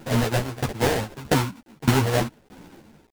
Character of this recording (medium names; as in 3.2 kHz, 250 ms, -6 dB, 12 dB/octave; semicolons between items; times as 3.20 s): aliases and images of a low sample rate 1.2 kHz, jitter 20%; tremolo saw down 1.6 Hz, depth 95%; a quantiser's noise floor 10-bit, dither none; a shimmering, thickened sound